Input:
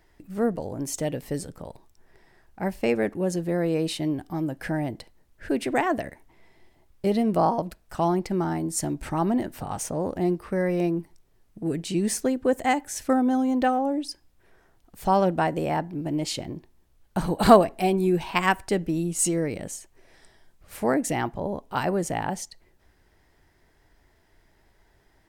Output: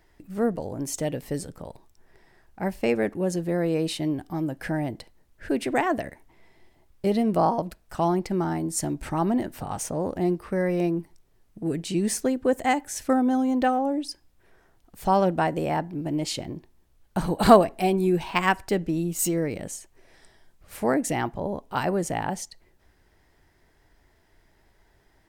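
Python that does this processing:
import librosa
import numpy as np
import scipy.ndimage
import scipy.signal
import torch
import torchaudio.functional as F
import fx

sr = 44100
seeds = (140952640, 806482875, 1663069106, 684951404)

y = fx.resample_linear(x, sr, factor=2, at=(18.28, 19.63))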